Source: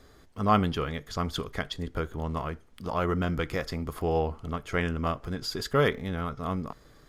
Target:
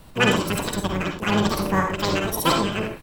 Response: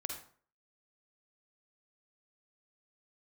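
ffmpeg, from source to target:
-filter_complex "[0:a]asetrate=103194,aresample=44100,highshelf=f=11000:g=5.5[s0];[1:a]atrim=start_sample=2205,atrim=end_sample=6174[s1];[s0][s1]afir=irnorm=-1:irlink=0,asplit=3[s2][s3][s4];[s3]asetrate=22050,aresample=44100,atempo=2,volume=0.501[s5];[s4]asetrate=35002,aresample=44100,atempo=1.25992,volume=0.355[s6];[s2][s5][s6]amix=inputs=3:normalize=0,acrossover=split=330|3100[s7][s8][s9];[s7]acontrast=35[s10];[s10][s8][s9]amix=inputs=3:normalize=0,volume=1.68"

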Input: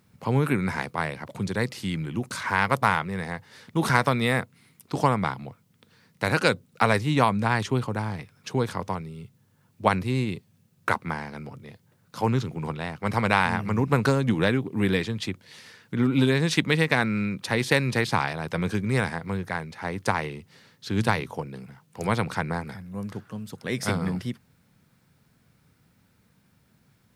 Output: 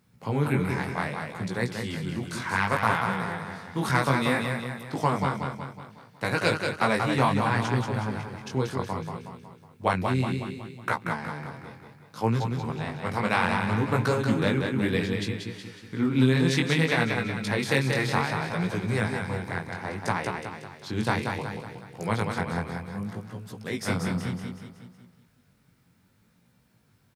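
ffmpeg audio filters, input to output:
-af "aecho=1:1:184|368|552|736|920|1104:0.562|0.281|0.141|0.0703|0.0351|0.0176,flanger=delay=16.5:depth=6.8:speed=0.64"

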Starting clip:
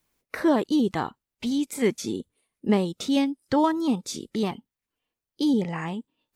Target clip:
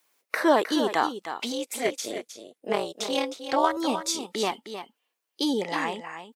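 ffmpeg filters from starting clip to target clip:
-filter_complex "[0:a]asettb=1/sr,asplit=3[s0][s1][s2];[s0]atrim=end=1.524[s3];[s1]atrim=start=1.52:end=3.77,asetpts=PTS-STARTPTS,afade=t=in:d=0.004:c=qsin,afade=t=out:st=2.246:d=0.004:c=qsin,tremolo=f=240:d=0.974[s4];[s2]atrim=start=3.766[s5];[s3][s4]acrossfade=d=0.004:c1=hsin:c2=qsin[s6];[s6][s5]acrossfade=d=0.004:c1=qsin:c2=hsin,highpass=520,aecho=1:1:311:0.316,volume=2"

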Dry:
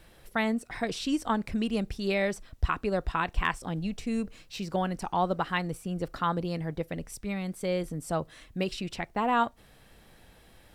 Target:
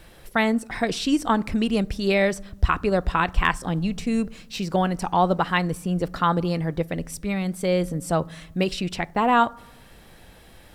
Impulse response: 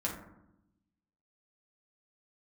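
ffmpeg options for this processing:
-filter_complex "[0:a]asplit=2[s0][s1];[1:a]atrim=start_sample=2205,asetrate=39249,aresample=44100[s2];[s1][s2]afir=irnorm=-1:irlink=0,volume=0.0668[s3];[s0][s3]amix=inputs=2:normalize=0,volume=2.11"

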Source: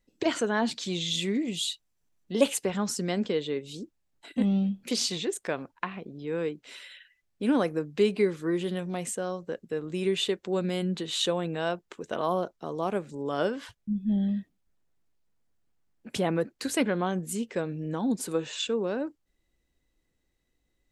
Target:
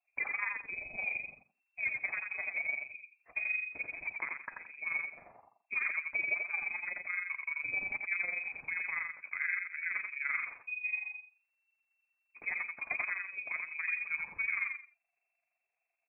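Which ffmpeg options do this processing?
-af "bandreject=f=50:t=h:w=6,bandreject=f=100:t=h:w=6,bandreject=f=150:t=h:w=6,bandreject=f=200:t=h:w=6,bandreject=f=250:t=h:w=6,bandreject=f=300:t=h:w=6,bandreject=f=350:t=h:w=6,tremolo=f=18:d=0.68,adynamicequalizer=threshold=0.00631:dfrequency=710:dqfactor=1.9:tfrequency=710:tqfactor=1.9:attack=5:release=100:ratio=0.375:range=2:mode=boostabove:tftype=bell,alimiter=limit=0.106:level=0:latency=1:release=332,atempo=1.3,lowshelf=f=130:g=-10,aecho=1:1:86|172|258:0.631|0.145|0.0334,lowpass=f=2300:t=q:w=0.5098,lowpass=f=2300:t=q:w=0.6013,lowpass=f=2300:t=q:w=0.9,lowpass=f=2300:t=q:w=2.563,afreqshift=-2700,volume=0.668" -ar 22050 -c:a libvorbis -b:a 48k

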